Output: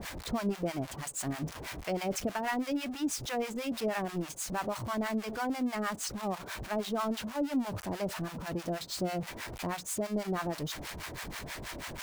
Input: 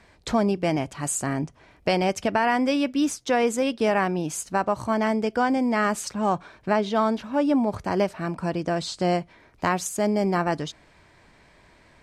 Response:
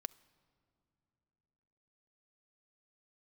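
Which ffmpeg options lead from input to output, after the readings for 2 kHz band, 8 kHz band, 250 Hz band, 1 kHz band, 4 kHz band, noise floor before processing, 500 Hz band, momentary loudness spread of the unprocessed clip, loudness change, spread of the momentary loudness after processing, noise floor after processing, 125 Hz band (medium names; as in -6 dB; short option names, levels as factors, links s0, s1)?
-9.5 dB, -6.0 dB, -9.5 dB, -11.5 dB, -5.5 dB, -56 dBFS, -11.5 dB, 6 LU, -10.5 dB, 7 LU, -46 dBFS, -8.0 dB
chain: -filter_complex "[0:a]aeval=exprs='val(0)+0.5*0.0708*sgn(val(0))':c=same,acrossover=split=730[s0][s1];[s0]aeval=exprs='val(0)*(1-1/2+1/2*cos(2*PI*6.2*n/s))':c=same[s2];[s1]aeval=exprs='val(0)*(1-1/2-1/2*cos(2*PI*6.2*n/s))':c=same[s3];[s2][s3]amix=inputs=2:normalize=0,volume=0.376"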